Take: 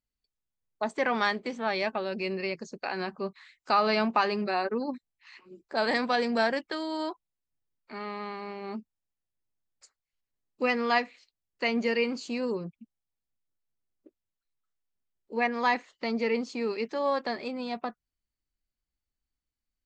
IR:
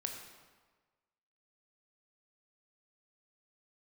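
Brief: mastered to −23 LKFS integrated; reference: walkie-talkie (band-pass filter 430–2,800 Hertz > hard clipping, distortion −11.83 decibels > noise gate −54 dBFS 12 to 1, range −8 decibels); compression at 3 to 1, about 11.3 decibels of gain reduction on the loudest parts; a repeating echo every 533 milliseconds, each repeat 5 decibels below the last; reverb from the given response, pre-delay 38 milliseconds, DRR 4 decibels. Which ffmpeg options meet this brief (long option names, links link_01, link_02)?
-filter_complex "[0:a]acompressor=threshold=-36dB:ratio=3,aecho=1:1:533|1066|1599|2132|2665|3198|3731:0.562|0.315|0.176|0.0988|0.0553|0.031|0.0173,asplit=2[link_01][link_02];[1:a]atrim=start_sample=2205,adelay=38[link_03];[link_02][link_03]afir=irnorm=-1:irlink=0,volume=-4dB[link_04];[link_01][link_04]amix=inputs=2:normalize=0,highpass=430,lowpass=2800,asoftclip=type=hard:threshold=-34dB,agate=range=-8dB:threshold=-54dB:ratio=12,volume=17.5dB"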